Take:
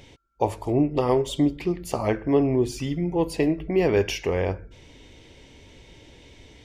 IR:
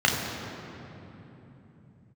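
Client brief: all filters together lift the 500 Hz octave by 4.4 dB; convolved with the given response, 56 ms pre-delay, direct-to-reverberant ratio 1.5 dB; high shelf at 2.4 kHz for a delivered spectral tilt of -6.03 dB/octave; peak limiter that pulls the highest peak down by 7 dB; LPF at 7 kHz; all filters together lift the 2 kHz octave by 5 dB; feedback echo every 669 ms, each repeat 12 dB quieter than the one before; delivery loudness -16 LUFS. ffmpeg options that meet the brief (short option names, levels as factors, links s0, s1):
-filter_complex "[0:a]lowpass=7000,equalizer=f=500:t=o:g=5.5,equalizer=f=2000:t=o:g=8,highshelf=f=2400:g=-4,alimiter=limit=0.251:level=0:latency=1,aecho=1:1:669|1338|2007:0.251|0.0628|0.0157,asplit=2[s0][s1];[1:a]atrim=start_sample=2205,adelay=56[s2];[s1][s2]afir=irnorm=-1:irlink=0,volume=0.119[s3];[s0][s3]amix=inputs=2:normalize=0,volume=1.68"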